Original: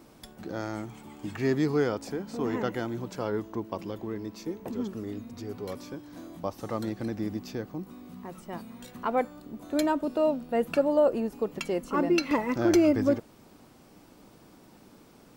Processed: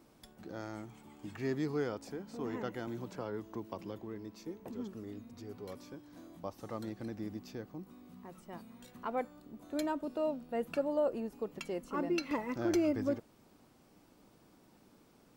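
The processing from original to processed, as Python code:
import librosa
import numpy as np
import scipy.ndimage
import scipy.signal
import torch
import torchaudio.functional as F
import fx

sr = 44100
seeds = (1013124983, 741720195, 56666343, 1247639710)

y = fx.band_squash(x, sr, depth_pct=70, at=(2.87, 3.99))
y = F.gain(torch.from_numpy(y), -9.0).numpy()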